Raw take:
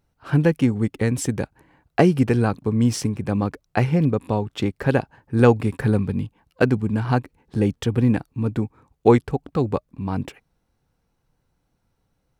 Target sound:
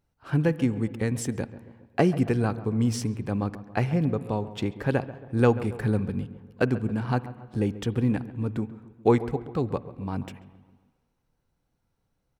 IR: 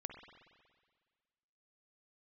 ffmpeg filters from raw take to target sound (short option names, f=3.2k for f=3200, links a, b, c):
-filter_complex "[0:a]asplit=2[a][b];[b]adelay=137,lowpass=f=1.4k:p=1,volume=-14.5dB,asplit=2[c][d];[d]adelay=137,lowpass=f=1.4k:p=1,volume=0.55,asplit=2[e][f];[f]adelay=137,lowpass=f=1.4k:p=1,volume=0.55,asplit=2[g][h];[h]adelay=137,lowpass=f=1.4k:p=1,volume=0.55,asplit=2[i][j];[j]adelay=137,lowpass=f=1.4k:p=1,volume=0.55[k];[a][c][e][g][i][k]amix=inputs=6:normalize=0,asplit=2[l][m];[1:a]atrim=start_sample=2205[n];[m][n]afir=irnorm=-1:irlink=0,volume=-8dB[o];[l][o]amix=inputs=2:normalize=0,volume=-7.5dB"